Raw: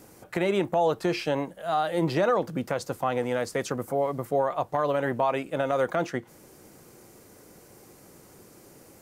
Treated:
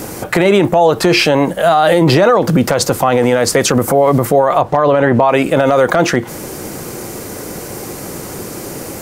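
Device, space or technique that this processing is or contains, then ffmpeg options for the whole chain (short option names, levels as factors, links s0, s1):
loud club master: -filter_complex "[0:a]asettb=1/sr,asplit=3[s0][s1][s2];[s0]atrim=end=4.614[s3];[s1]atrim=start=4.61:end=5.29,asetpts=PTS-STARTPTS,afade=t=in:d=0.004:c=qsin,afade=t=out:st=0.676:d=0.004:c=qsin,aemphasis=mode=reproduction:type=50fm[s4];[s2]atrim=start=5.286[s5];[s3][s4]acrossfade=d=0.004:c1=hsin:c2=qsin[s6];[s6][s5]acrossfade=d=0.004:c1=qsin:c2=hsin,acompressor=threshold=0.0501:ratio=3,asoftclip=type=hard:threshold=0.119,alimiter=level_in=21.1:limit=0.891:release=50:level=0:latency=1,volume=0.891"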